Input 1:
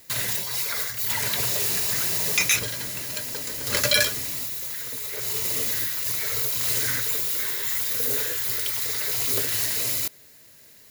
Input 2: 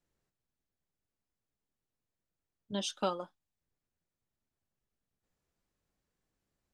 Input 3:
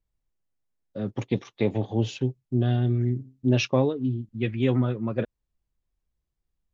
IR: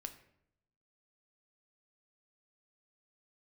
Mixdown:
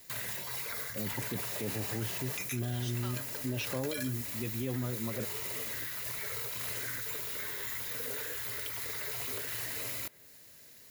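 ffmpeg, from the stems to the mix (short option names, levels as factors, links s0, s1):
-filter_complex "[0:a]acrossover=split=540|2900|7700[s0][s1][s2][s3];[s0]acompressor=threshold=0.00631:ratio=4[s4];[s1]acompressor=threshold=0.0126:ratio=4[s5];[s2]acompressor=threshold=0.00355:ratio=4[s6];[s3]acompressor=threshold=0.02:ratio=4[s7];[s4][s5][s6][s7]amix=inputs=4:normalize=0,volume=0.631[s8];[1:a]highpass=1400,volume=0.75[s9];[2:a]volume=0.422[s10];[s8][s9][s10]amix=inputs=3:normalize=0,alimiter=level_in=1.19:limit=0.0631:level=0:latency=1:release=18,volume=0.841"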